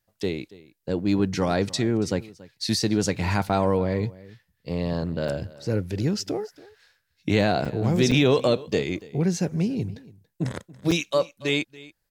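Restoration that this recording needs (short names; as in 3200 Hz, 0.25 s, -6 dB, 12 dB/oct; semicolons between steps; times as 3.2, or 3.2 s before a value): interpolate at 3.49/5.28/7.65/8.11/9.01/10.91, 5.6 ms; inverse comb 0.282 s -20.5 dB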